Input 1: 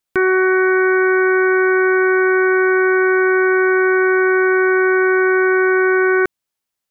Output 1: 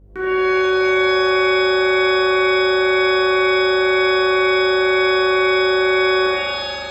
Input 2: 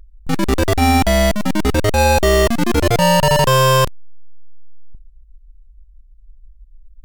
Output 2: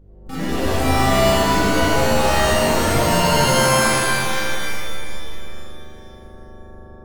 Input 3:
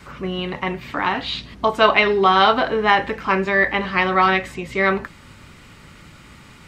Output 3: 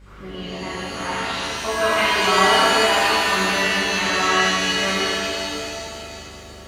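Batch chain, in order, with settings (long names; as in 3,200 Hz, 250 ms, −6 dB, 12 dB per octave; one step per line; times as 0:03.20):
hum with harmonics 50 Hz, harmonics 11, −35 dBFS −7 dB per octave
reverb with rising layers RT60 2.4 s, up +7 semitones, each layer −2 dB, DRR −9.5 dB
level −14.5 dB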